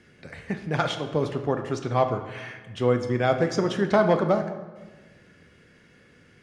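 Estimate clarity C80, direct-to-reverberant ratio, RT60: 11.0 dB, 6.0 dB, 1.3 s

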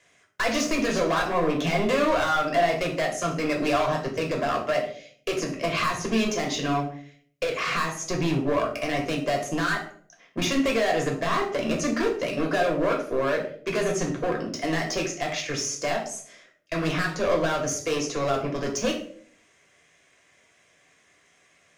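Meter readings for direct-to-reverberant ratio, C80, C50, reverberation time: 0.0 dB, 11.5 dB, 7.5 dB, 0.50 s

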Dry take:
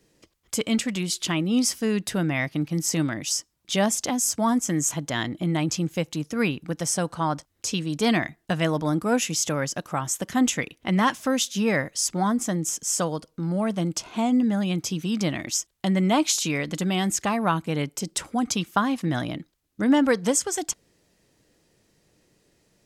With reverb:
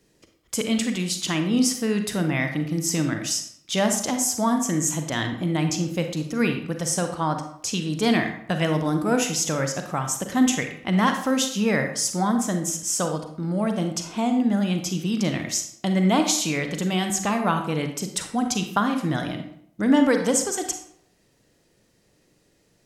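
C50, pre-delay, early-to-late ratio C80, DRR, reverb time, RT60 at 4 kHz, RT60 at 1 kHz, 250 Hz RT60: 7.0 dB, 34 ms, 10.5 dB, 5.5 dB, 0.70 s, 0.50 s, 0.65 s, 0.65 s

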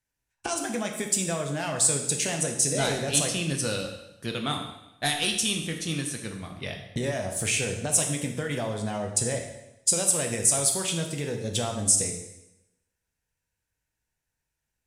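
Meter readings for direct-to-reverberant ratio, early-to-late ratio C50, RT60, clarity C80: 3.0 dB, 6.0 dB, 0.90 s, 8.5 dB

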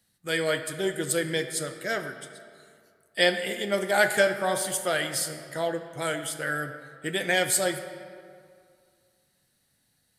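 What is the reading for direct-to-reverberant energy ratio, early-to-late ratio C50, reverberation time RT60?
7.5 dB, 9.0 dB, 2.3 s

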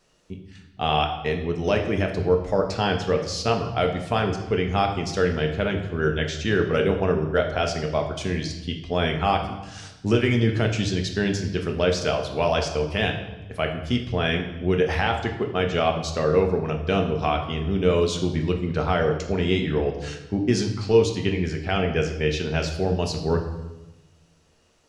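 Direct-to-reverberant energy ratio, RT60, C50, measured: 3.0 dB, 1.0 s, 7.5 dB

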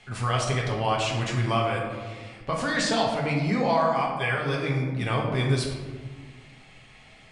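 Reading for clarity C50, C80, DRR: 3.0 dB, 5.0 dB, -2.5 dB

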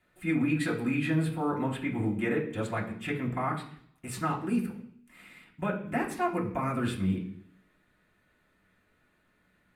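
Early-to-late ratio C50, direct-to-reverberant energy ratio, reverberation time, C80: 9.0 dB, -5.0 dB, 0.60 s, 12.5 dB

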